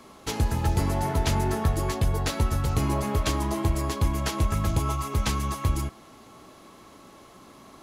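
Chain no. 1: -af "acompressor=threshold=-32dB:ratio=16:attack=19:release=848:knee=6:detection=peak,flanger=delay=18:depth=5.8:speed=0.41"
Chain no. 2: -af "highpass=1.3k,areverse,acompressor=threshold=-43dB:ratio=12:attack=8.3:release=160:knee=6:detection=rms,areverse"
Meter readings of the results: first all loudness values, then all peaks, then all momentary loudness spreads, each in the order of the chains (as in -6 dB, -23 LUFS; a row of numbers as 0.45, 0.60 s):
-42.0, -47.0 LUFS; -25.5, -32.5 dBFS; 12, 9 LU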